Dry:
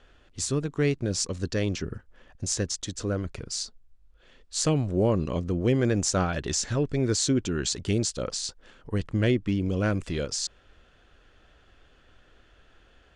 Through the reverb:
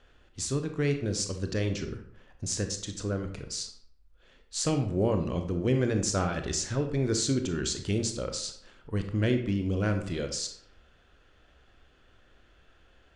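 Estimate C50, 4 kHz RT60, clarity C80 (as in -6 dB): 8.5 dB, 0.40 s, 12.0 dB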